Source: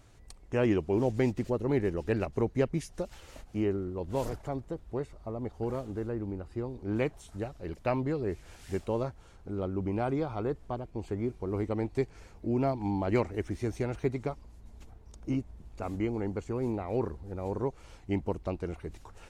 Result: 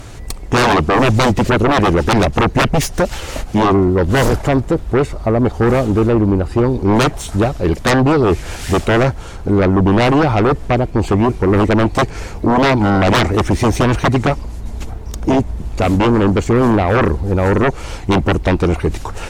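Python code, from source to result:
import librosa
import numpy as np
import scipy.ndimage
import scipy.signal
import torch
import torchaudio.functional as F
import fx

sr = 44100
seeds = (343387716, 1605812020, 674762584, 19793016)

y = fx.tracing_dist(x, sr, depth_ms=0.053)
y = fx.fold_sine(y, sr, drive_db=15, ceiling_db=-14.5)
y = y * librosa.db_to_amplitude(6.0)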